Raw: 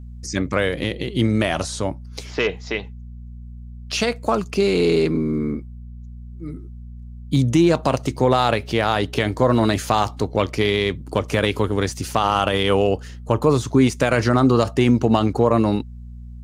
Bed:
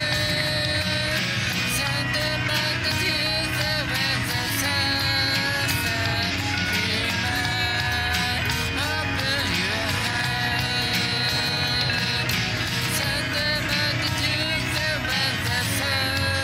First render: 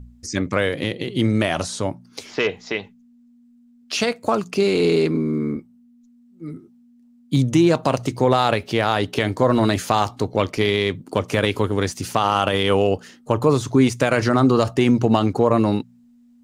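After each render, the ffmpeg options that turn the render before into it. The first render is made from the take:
-af "bandreject=f=60:t=h:w=4,bandreject=f=120:t=h:w=4,bandreject=f=180:t=h:w=4"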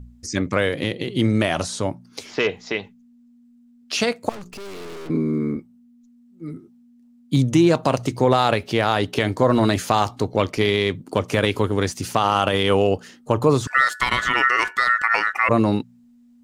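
-filter_complex "[0:a]asettb=1/sr,asplit=3[a][b][c];[a]atrim=end=4.294[d];[b]atrim=start=4.29:end=5.1,asetpts=PTS-STARTPTS,afade=t=in:d=0.004:c=qsin,afade=t=out:st=0.806:d=0.004:c=qsin,aeval=exprs='(tanh(56.2*val(0)+0.65)-tanh(0.65))/56.2':c=same[e];[c]atrim=start=5.096[f];[d][e]acrossfade=d=0.004:c1=hsin:c2=qsin[g];[g][f]acrossfade=d=0.004:c1=qsin:c2=hsin,asettb=1/sr,asplit=3[h][i][j];[h]atrim=end=13.674[k];[i]atrim=start=13.67:end=15.49,asetpts=PTS-STARTPTS,afade=t=in:d=0.004:c=qsin,afade=t=out:st=1.816:d=0.004:c=qsin,aeval=exprs='val(0)*sin(2*PI*1600*n/s)':c=same[l];[j]atrim=start=15.486[m];[k][l]acrossfade=d=0.004:c1=hsin:c2=qsin[n];[n][m]acrossfade=d=0.004:c1=qsin:c2=hsin"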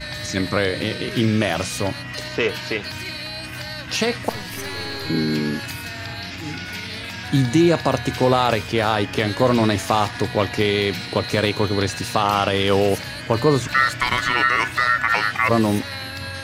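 -filter_complex "[1:a]volume=-7.5dB[a];[0:a][a]amix=inputs=2:normalize=0"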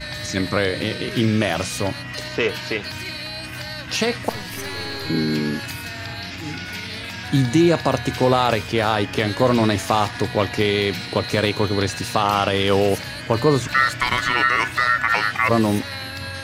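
-af anull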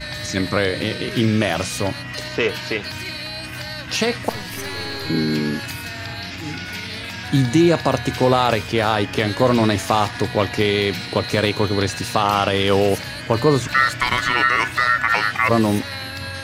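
-af "volume=1dB"

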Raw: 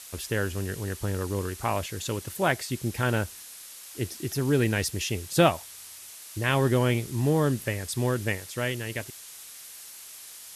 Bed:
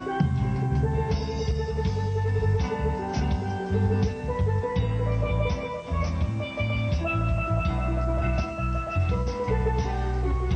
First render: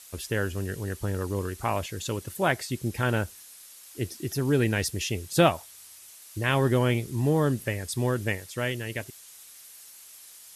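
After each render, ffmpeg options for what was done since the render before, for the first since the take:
-af "afftdn=nr=6:nf=-45"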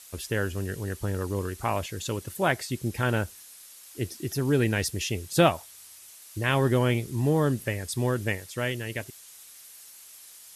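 -af anull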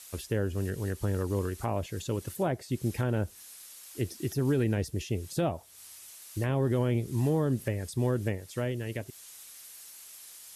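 -filter_complex "[0:a]acrossover=split=710[a][b];[a]alimiter=limit=-20.5dB:level=0:latency=1[c];[b]acompressor=threshold=-41dB:ratio=6[d];[c][d]amix=inputs=2:normalize=0"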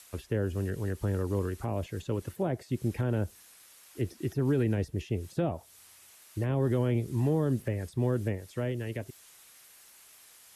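-filter_complex "[0:a]acrossover=split=300|550|2800[a][b][c][d];[c]alimiter=level_in=9dB:limit=-24dB:level=0:latency=1:release=32,volume=-9dB[e];[d]acompressor=threshold=-54dB:ratio=6[f];[a][b][e][f]amix=inputs=4:normalize=0"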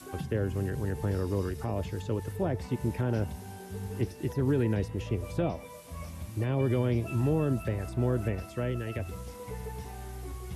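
-filter_complex "[1:a]volume=-14.5dB[a];[0:a][a]amix=inputs=2:normalize=0"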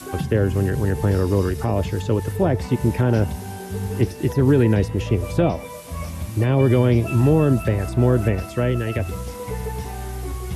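-af "volume=11dB"

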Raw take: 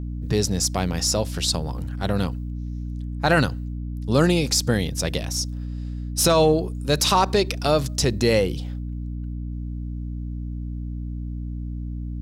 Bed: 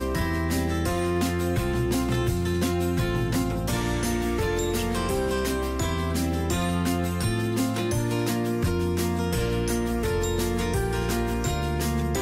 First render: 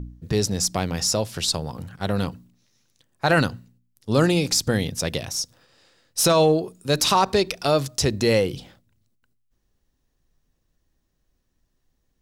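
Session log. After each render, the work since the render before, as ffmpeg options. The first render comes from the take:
-af "bandreject=f=60:t=h:w=4,bandreject=f=120:t=h:w=4,bandreject=f=180:t=h:w=4,bandreject=f=240:t=h:w=4,bandreject=f=300:t=h:w=4"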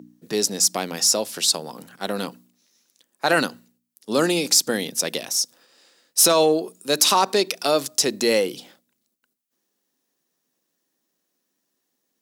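-af "highpass=f=220:w=0.5412,highpass=f=220:w=1.3066,highshelf=f=6k:g=9.5"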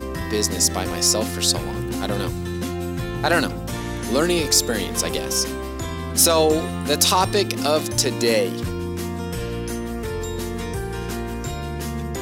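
-filter_complex "[1:a]volume=-2dB[a];[0:a][a]amix=inputs=2:normalize=0"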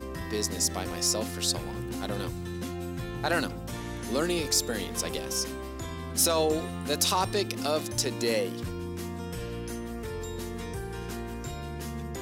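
-af "volume=-8.5dB"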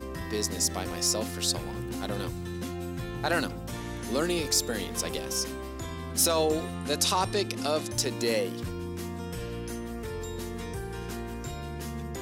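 -filter_complex "[0:a]asettb=1/sr,asplit=3[a][b][c];[a]atrim=end=6.744[d];[b]atrim=start=6.74:end=7.92,asetpts=PTS-STARTPTS,afade=t=in:d=0.004:c=qsin,afade=t=out:st=1.176:d=0.004:c=qsin,lowpass=f=12k:w=0.5412,lowpass=f=12k:w=1.3066[e];[c]atrim=start=7.916[f];[d][e]acrossfade=d=0.004:c1=hsin:c2=qsin[g];[g][f]acrossfade=d=0.004:c1=qsin:c2=hsin"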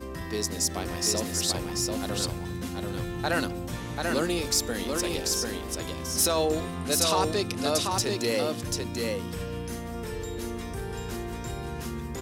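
-af "aecho=1:1:739:0.668"

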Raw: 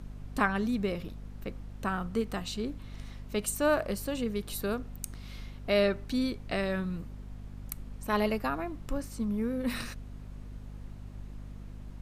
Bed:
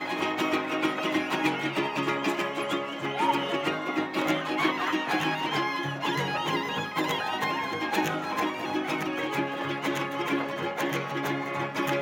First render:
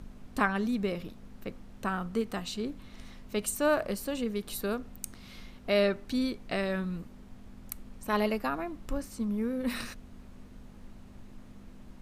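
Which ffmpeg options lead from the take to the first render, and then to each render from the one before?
-af "bandreject=f=50:t=h:w=6,bandreject=f=100:t=h:w=6,bandreject=f=150:t=h:w=6"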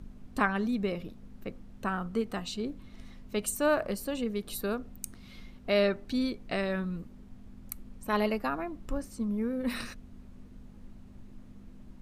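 -af "afftdn=nr=6:nf=-51"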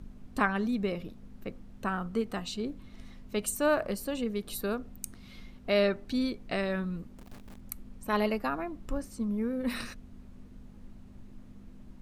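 -filter_complex "[0:a]asettb=1/sr,asplit=3[a][b][c];[a]atrim=end=7.184[d];[b]atrim=start=7.18:end=7.61,asetpts=PTS-STARTPTS,afade=t=in:d=0.004:c=qsin,afade=t=out:st=0.426:d=0.004:c=qsin,acrusher=bits=9:dc=4:mix=0:aa=0.000001[e];[c]atrim=start=7.606[f];[d][e]acrossfade=d=0.004:c1=hsin:c2=qsin[g];[g][f]acrossfade=d=0.004:c1=qsin:c2=hsin"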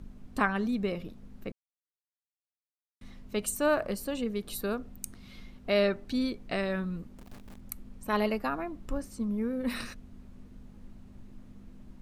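-filter_complex "[0:a]asplit=3[a][b][c];[a]atrim=end=1.52,asetpts=PTS-STARTPTS,afade=t=out:st=1.516:d=0.004:c=hsin[d];[b]atrim=start=1.52:end=3.01,asetpts=PTS-STARTPTS,volume=0[e];[c]atrim=start=3.01,asetpts=PTS-STARTPTS,afade=t=in:d=0.004:c=hsin[f];[d][e][f]concat=n=3:v=0:a=1"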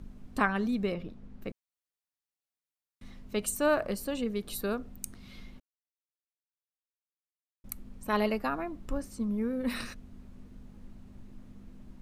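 -filter_complex "[0:a]asettb=1/sr,asplit=3[a][b][c];[a]atrim=end=0.944[d];[b]atrim=start=0.94:end=1.42,asetpts=PTS-STARTPTS,afade=t=in:d=0.004:c=qsin,afade=t=out:st=0.476:d=0.004:c=qsin,aemphasis=mode=reproduction:type=50fm[e];[c]atrim=start=1.416[f];[d][e]acrossfade=d=0.004:c1=hsin:c2=qsin[g];[g][f]acrossfade=d=0.004:c1=qsin:c2=hsin,asplit=3[h][i][j];[h]atrim=end=5.6,asetpts=PTS-STARTPTS,afade=t=out:st=5.596:d=0.004:c=hsin[k];[i]atrim=start=5.6:end=7.64,asetpts=PTS-STARTPTS,volume=0[l];[j]atrim=start=7.64,asetpts=PTS-STARTPTS,afade=t=in:d=0.004:c=hsin[m];[k][l][m]concat=n=3:v=0:a=1"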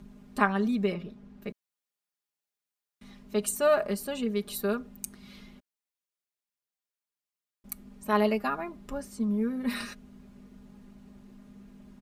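-af "highpass=f=120:p=1,aecho=1:1:4.9:0.74"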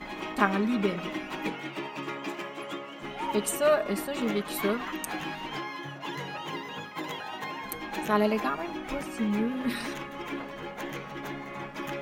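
-filter_complex "[1:a]volume=-8dB[a];[0:a][a]amix=inputs=2:normalize=0"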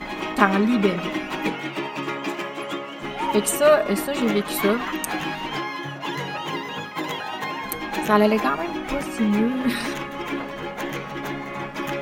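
-af "volume=7.5dB,alimiter=limit=-2dB:level=0:latency=1"

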